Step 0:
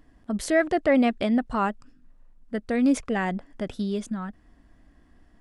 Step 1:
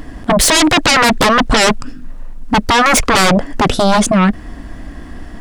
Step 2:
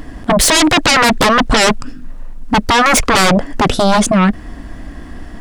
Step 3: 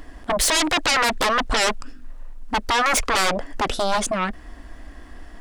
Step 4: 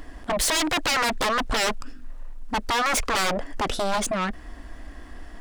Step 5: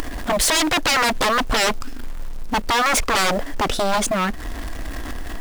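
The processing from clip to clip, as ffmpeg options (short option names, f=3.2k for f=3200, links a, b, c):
-filter_complex "[0:a]asplit=2[a][b];[b]alimiter=limit=-18.5dB:level=0:latency=1:release=35,volume=0dB[c];[a][c]amix=inputs=2:normalize=0,aeval=exprs='0.447*sin(PI/2*7.08*val(0)/0.447)':c=same"
-af anull
-af "equalizer=f=150:t=o:w=1.6:g=-13,volume=-8dB"
-af "asoftclip=type=tanh:threshold=-19.5dB"
-af "aeval=exprs='val(0)+0.5*0.0133*sgn(val(0))':c=same,acompressor=mode=upward:threshold=-25dB:ratio=2.5,acrusher=bits=6:mode=log:mix=0:aa=0.000001,volume=4dB"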